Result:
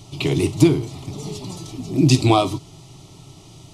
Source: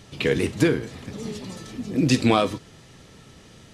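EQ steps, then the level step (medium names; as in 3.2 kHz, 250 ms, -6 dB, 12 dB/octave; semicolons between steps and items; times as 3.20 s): peaking EQ 64 Hz +6.5 dB 1.8 oct; static phaser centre 330 Hz, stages 8; +6.0 dB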